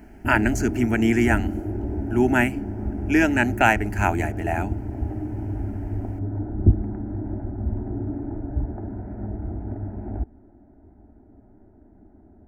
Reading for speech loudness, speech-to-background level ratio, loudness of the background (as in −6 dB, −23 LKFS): −22.0 LKFS, 7.0 dB, −29.0 LKFS